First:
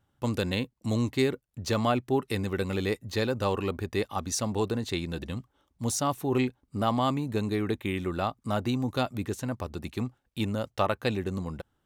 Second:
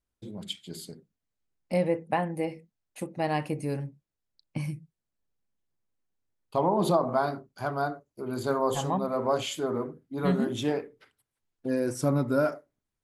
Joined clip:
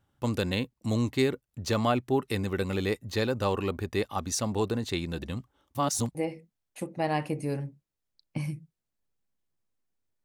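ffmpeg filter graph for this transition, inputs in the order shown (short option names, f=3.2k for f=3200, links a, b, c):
-filter_complex "[0:a]apad=whole_dur=10.24,atrim=end=10.24,asplit=2[a][b];[a]atrim=end=5.752[c];[b]atrim=start=5.748:end=6.152,asetpts=PTS-STARTPTS,areverse[d];[1:a]atrim=start=2.348:end=6.44[e];[c][d]acrossfade=d=0.004:c1=hsin:c2=hsin[f];[f][e]acrossfade=d=0.004:c1=hsin:c2=hsin"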